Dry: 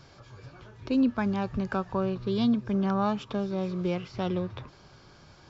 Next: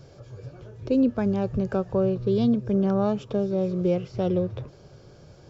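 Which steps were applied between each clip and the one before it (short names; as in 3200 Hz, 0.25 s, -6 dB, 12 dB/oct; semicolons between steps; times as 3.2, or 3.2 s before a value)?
graphic EQ 125/250/500/1000/2000/4000 Hz +5/-3/+9/-9/-6/-6 dB; gain +3 dB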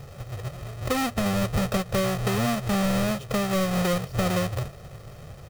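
half-waves squared off; compressor, threshold -23 dBFS, peak gain reduction 8 dB; comb 1.6 ms, depth 60%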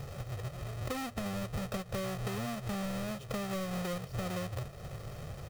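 compressor 3:1, threshold -38 dBFS, peak gain reduction 13 dB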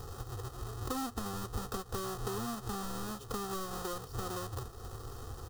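fixed phaser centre 600 Hz, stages 6; gain +4 dB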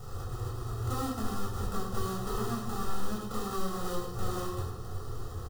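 on a send: echo 0.106 s -9 dB; on the sum: shoebox room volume 990 m³, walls furnished, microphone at 6.9 m; gain -6.5 dB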